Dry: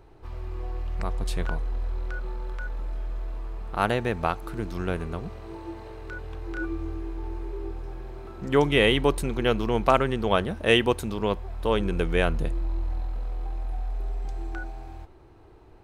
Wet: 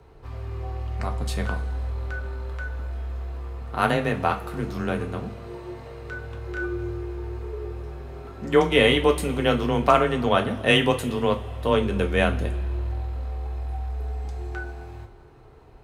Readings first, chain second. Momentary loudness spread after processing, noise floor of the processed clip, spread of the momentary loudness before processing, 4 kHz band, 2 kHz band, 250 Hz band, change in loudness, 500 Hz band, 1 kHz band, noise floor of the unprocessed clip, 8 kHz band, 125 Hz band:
17 LU, −48 dBFS, 17 LU, +2.5 dB, +3.0 dB, +2.5 dB, +2.5 dB, +2.5 dB, +3.0 dB, −51 dBFS, +2.5 dB, +3.0 dB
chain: coupled-rooms reverb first 0.25 s, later 2.2 s, from −20 dB, DRR 3 dB
frequency shifter +23 Hz
level +1 dB

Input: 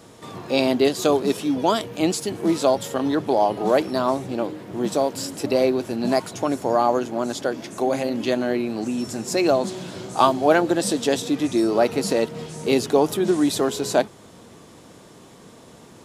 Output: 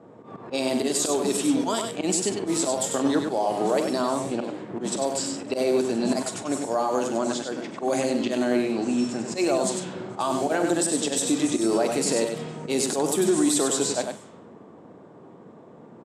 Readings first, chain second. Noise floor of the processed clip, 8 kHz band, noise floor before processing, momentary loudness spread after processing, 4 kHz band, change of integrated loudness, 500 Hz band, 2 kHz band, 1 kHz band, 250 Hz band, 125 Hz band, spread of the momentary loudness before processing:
−48 dBFS, +6.0 dB, −47 dBFS, 7 LU, −1.5 dB, −3.0 dB, −4.0 dB, −4.0 dB, −5.5 dB, −2.0 dB, −4.5 dB, 9 LU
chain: low-pass that shuts in the quiet parts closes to 890 Hz, open at −17 dBFS
high-pass filter 150 Hz 12 dB per octave
parametric band 8,100 Hz +14.5 dB 0.59 octaves
volume swells 108 ms
brickwall limiter −15 dBFS, peak gain reduction 11 dB
double-tracking delay 44 ms −13.5 dB
single-tap delay 98 ms −5.5 dB

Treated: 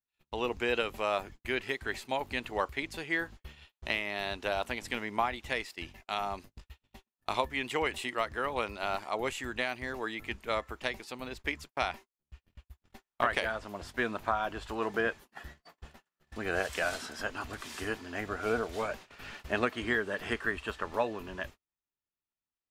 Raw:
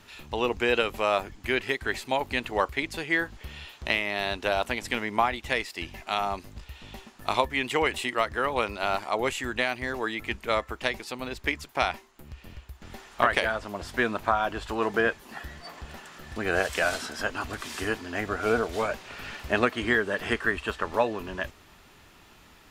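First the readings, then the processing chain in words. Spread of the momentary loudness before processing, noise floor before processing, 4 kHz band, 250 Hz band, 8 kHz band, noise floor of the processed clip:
16 LU, −55 dBFS, −6.0 dB, −6.0 dB, −6.0 dB, below −85 dBFS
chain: noise gate −40 dBFS, range −41 dB
level −6 dB

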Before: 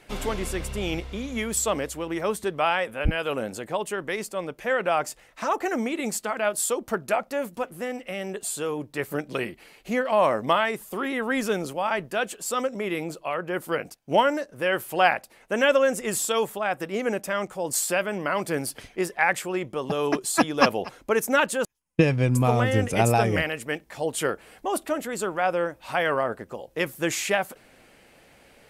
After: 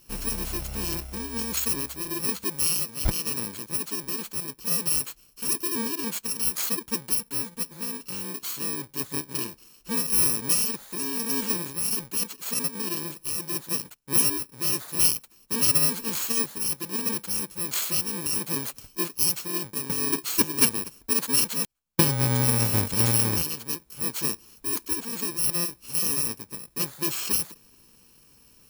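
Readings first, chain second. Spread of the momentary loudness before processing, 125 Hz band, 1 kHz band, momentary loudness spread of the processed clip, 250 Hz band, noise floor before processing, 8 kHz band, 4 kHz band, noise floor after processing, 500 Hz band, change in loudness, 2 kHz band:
10 LU, −2.0 dB, −12.5 dB, 10 LU, −4.0 dB, −56 dBFS, +6.5 dB, +3.5 dB, −57 dBFS, −13.0 dB, +1.0 dB, −10.0 dB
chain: samples in bit-reversed order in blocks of 64 samples
level −1.5 dB

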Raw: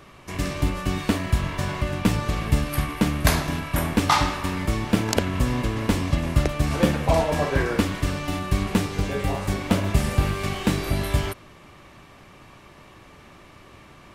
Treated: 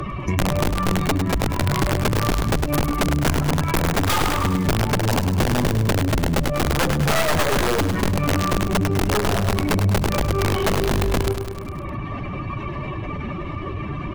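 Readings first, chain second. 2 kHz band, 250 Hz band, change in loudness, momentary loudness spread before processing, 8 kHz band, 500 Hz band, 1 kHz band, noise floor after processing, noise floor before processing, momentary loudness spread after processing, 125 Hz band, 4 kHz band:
+3.5 dB, +2.5 dB, +2.5 dB, 6 LU, +4.5 dB, +4.5 dB, +4.0 dB, −30 dBFS, −49 dBFS, 9 LU, +3.5 dB, +3.5 dB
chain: expanding power law on the bin magnitudes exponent 2.4
downward compressor 5 to 1, threshold −21 dBFS, peak gain reduction 7.5 dB
harmonic generator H 6 −19 dB, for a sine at −10 dBFS
wrap-around overflow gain 21 dB
repeating echo 102 ms, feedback 51%, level −8.5 dB
multiband upward and downward compressor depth 70%
level +7 dB

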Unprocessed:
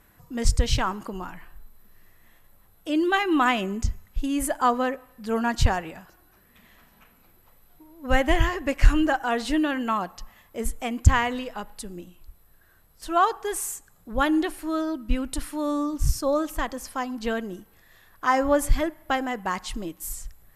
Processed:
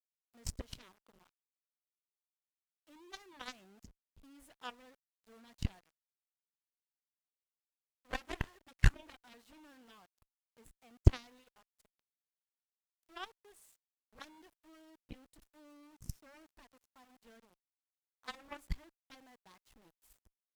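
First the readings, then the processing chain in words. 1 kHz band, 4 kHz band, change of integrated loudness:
−27.5 dB, −18.5 dB, −14.0 dB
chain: centre clipping without the shift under −29.5 dBFS
harmonic generator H 3 −9 dB, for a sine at −3.5 dBFS
level −6.5 dB

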